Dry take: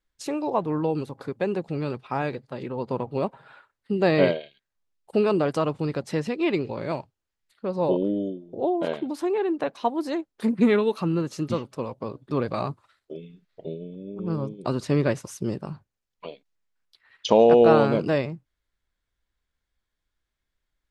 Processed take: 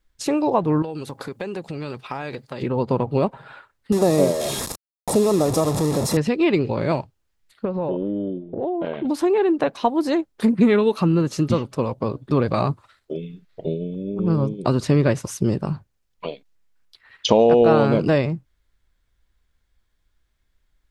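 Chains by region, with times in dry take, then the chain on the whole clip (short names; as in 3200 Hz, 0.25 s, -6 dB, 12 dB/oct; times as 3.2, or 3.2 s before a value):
0.82–2.62 compressor, threshold -32 dBFS + tilt +2 dB/oct
3.92–6.17 delta modulation 64 kbps, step -22 dBFS + bell 2300 Hz -14.5 dB 1.3 oct + notch comb 1500 Hz
7.65–9.05 compressor 3:1, threshold -32 dBFS + LPF 3100 Hz 24 dB/oct
whole clip: low shelf 130 Hz +7.5 dB; compressor 2:1, threshold -24 dBFS; gain +7.5 dB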